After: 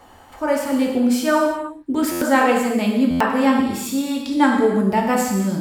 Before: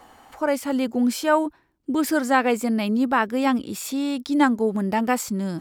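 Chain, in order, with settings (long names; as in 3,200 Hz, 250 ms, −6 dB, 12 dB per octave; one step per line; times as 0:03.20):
low-shelf EQ 100 Hz +7 dB
reverb whose tail is shaped and stops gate 380 ms falling, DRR −1 dB
buffer that repeats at 0:02.11/0:03.10, samples 512, times 8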